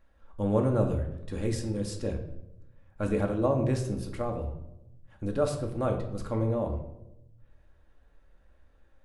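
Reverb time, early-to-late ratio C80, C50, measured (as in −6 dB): 0.90 s, 11.0 dB, 8.5 dB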